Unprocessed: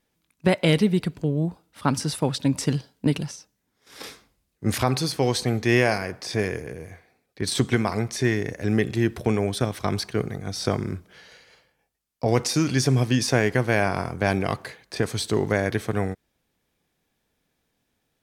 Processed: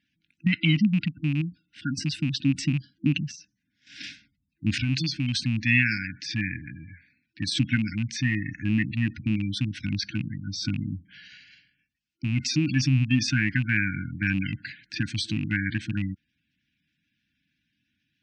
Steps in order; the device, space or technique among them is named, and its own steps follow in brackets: low-pass 7.6 kHz 24 dB/octave; FFT band-reject 330–1400 Hz; 1.41–1.98 s: bass shelf 410 Hz -6 dB; spectral gate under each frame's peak -20 dB strong; car door speaker with a rattle (rattle on loud lows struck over -23 dBFS, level -31 dBFS; cabinet simulation 83–8500 Hz, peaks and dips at 350 Hz -4 dB, 2.7 kHz +9 dB, 6.9 kHz -6 dB)

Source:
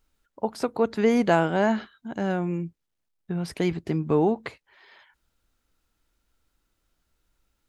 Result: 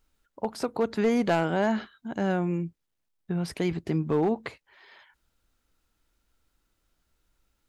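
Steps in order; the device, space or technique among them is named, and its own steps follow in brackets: clipper into limiter (hard clipper -14.5 dBFS, distortion -20 dB; peak limiter -17.5 dBFS, peak gain reduction 3 dB)

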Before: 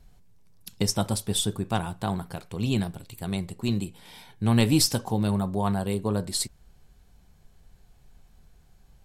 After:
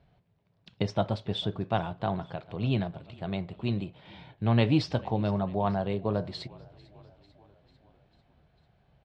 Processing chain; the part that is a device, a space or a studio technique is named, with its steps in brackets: frequency-shifting delay pedal into a guitar cabinet (frequency-shifting echo 446 ms, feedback 64%, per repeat -35 Hz, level -23 dB; cabinet simulation 85–3600 Hz, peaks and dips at 130 Hz +4 dB, 220 Hz -3 dB, 630 Hz +8 dB); trim -2.5 dB

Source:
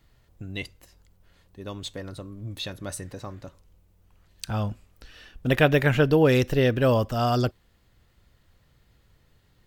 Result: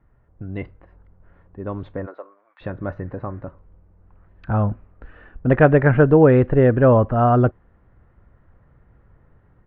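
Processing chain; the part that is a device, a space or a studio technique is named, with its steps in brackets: 2.05–2.60 s: high-pass 330 Hz -> 1.2 kHz 24 dB/octave; action camera in a waterproof case (low-pass 1.6 kHz 24 dB/octave; level rider gain up to 6 dB; trim +2 dB; AAC 64 kbps 16 kHz)

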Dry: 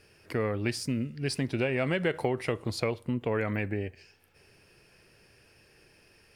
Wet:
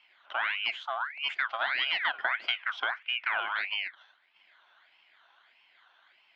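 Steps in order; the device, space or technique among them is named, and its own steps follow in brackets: voice changer toy (ring modulator with a swept carrier 1.8 kHz, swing 50%, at 1.6 Hz; cabinet simulation 480–3900 Hz, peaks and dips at 480 Hz -10 dB, 690 Hz +5 dB, 990 Hz +4 dB, 1.5 kHz +9 dB, 2.1 kHz +6 dB, 3.2 kHz +9 dB); trim -4.5 dB

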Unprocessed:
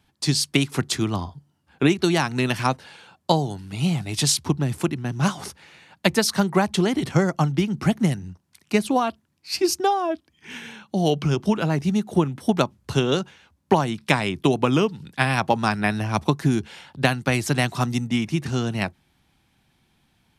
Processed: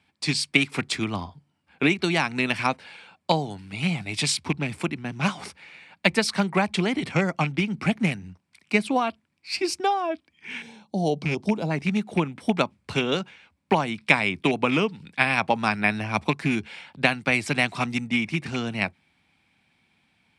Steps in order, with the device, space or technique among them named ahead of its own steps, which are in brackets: 10.62–11.71 s: high-order bell 1.9 kHz -13.5 dB; car door speaker with a rattle (rattle on loud lows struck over -19 dBFS, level -21 dBFS; cabinet simulation 97–9100 Hz, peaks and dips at 130 Hz -7 dB, 360 Hz -4 dB, 2.3 kHz +10 dB, 6.4 kHz -7 dB); trim -2 dB

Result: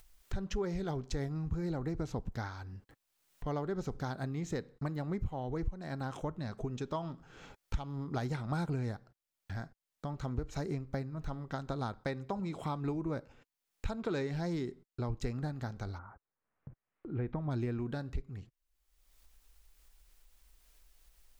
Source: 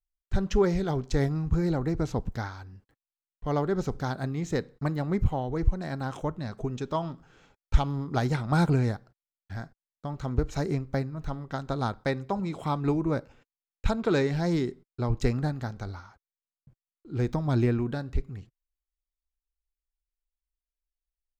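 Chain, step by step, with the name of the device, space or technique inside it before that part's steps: upward and downward compression (upward compressor, threshold -34 dBFS; compression 3:1, threshold -30 dBFS, peak gain reduction 13.5 dB); 15.97–17.50 s: low-pass 1.4 kHz -> 2.9 kHz 24 dB/octave; trim -3.5 dB

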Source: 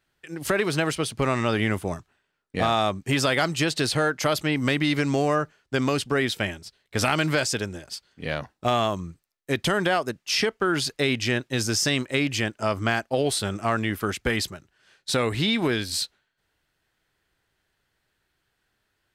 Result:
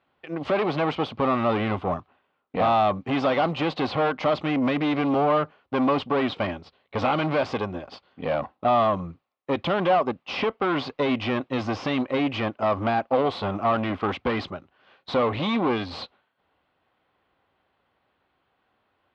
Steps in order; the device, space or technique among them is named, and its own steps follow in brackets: guitar amplifier (valve stage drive 27 dB, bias 0.45; tone controls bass +1 dB, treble -4 dB; cabinet simulation 83–3600 Hz, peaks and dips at 130 Hz -7 dB, 260 Hz +5 dB, 540 Hz +7 dB, 770 Hz +8 dB, 1.1 kHz +9 dB, 1.7 kHz -6 dB); trim +4.5 dB

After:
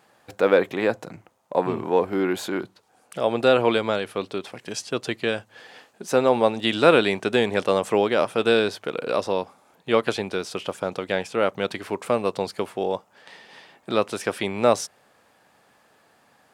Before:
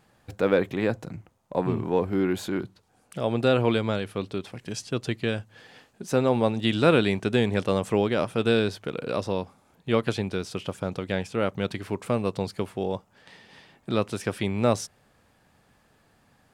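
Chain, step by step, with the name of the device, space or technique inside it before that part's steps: filter by subtraction (in parallel: low-pass 640 Hz 12 dB/octave + polarity flip); on the sum: trim +4 dB

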